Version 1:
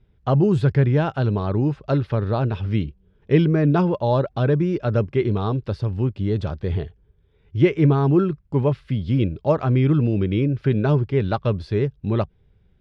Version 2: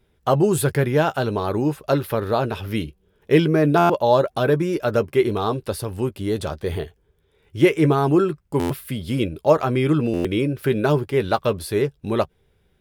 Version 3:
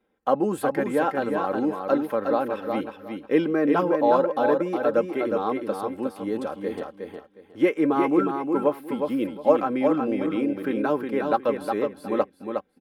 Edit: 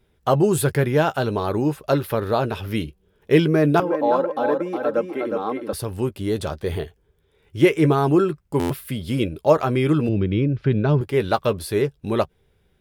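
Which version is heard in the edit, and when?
2
3.80–5.73 s: from 3
10.09–11.01 s: from 1

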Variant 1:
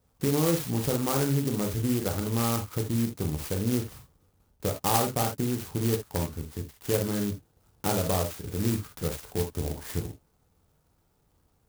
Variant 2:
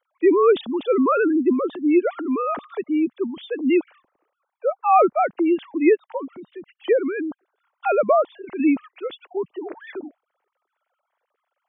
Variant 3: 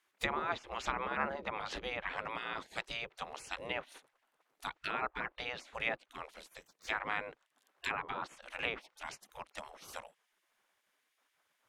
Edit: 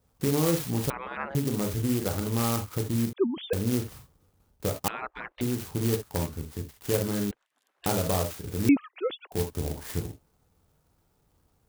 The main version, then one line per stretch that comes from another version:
1
0.90–1.35 s: from 3
3.13–3.53 s: from 2
4.88–5.41 s: from 3
7.31–7.86 s: from 3
8.69–9.32 s: from 2

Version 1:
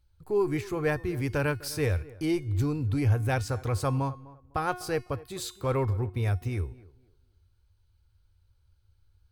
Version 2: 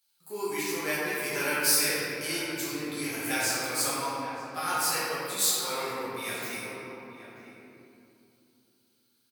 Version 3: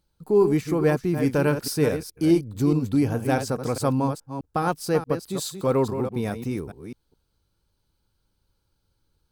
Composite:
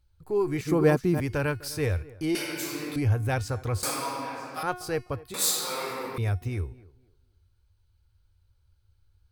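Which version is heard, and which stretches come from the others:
1
0.61–1.20 s: from 3
2.35–2.96 s: from 2
3.83–4.63 s: from 2
5.34–6.18 s: from 2

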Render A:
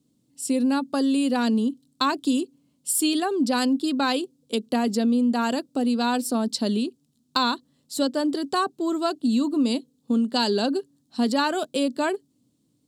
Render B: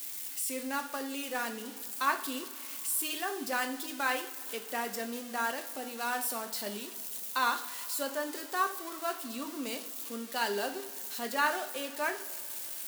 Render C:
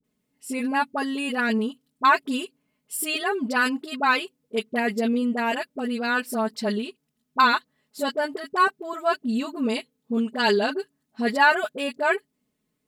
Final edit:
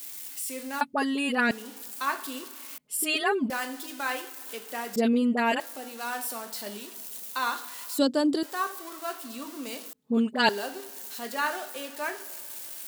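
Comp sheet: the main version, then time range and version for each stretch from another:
B
0.81–1.51 s: from C
2.78–3.50 s: from C
4.96–5.60 s: from C
7.98–8.43 s: from A
9.93–10.49 s: from C

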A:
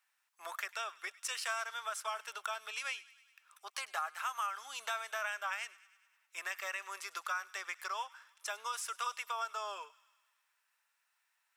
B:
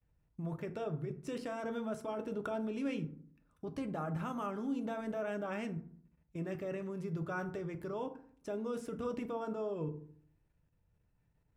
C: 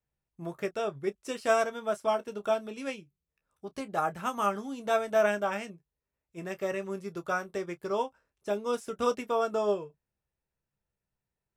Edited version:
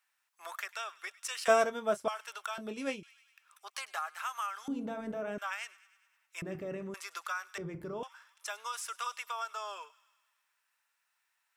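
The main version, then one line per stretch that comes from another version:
A
1.48–2.08 s: from C
2.58–3.03 s: from C
4.68–5.38 s: from B
6.42–6.94 s: from B
7.58–8.03 s: from B

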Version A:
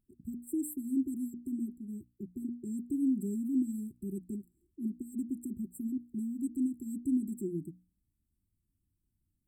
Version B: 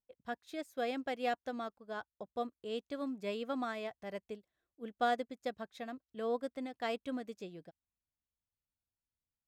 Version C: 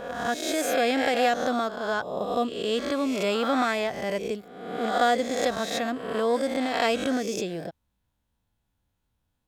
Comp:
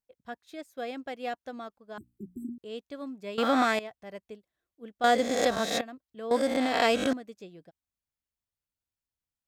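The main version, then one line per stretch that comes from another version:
B
1.98–2.58 s: from A
3.38–3.79 s: from C
5.04–5.81 s: from C
6.31–7.13 s: from C

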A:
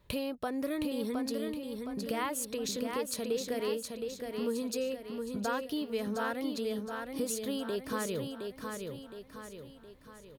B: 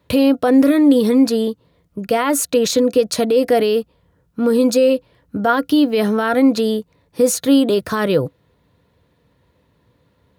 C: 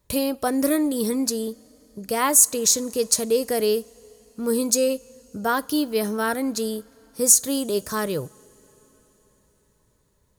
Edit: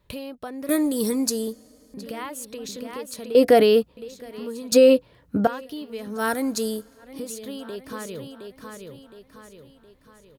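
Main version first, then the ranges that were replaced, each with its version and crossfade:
A
0.69–1.94 s: from C
3.35–3.97 s: from B
4.72–5.47 s: from B
6.17–7.05 s: from C, crossfade 0.16 s

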